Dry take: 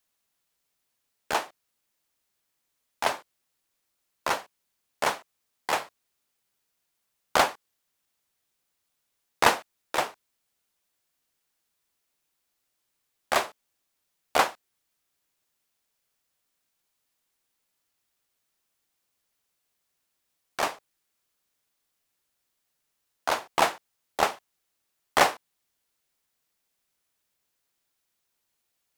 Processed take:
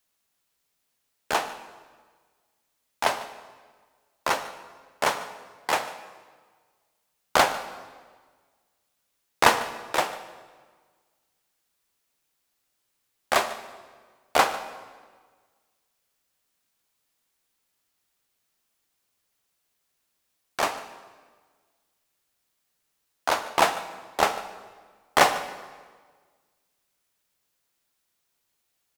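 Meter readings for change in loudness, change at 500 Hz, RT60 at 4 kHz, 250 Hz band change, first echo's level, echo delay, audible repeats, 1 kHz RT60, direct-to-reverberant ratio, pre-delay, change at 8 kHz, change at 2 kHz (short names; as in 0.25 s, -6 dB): +1.5 dB, +2.5 dB, 1.3 s, +2.5 dB, -18.0 dB, 0.148 s, 1, 1.5 s, 9.5 dB, 8 ms, +2.5 dB, +2.5 dB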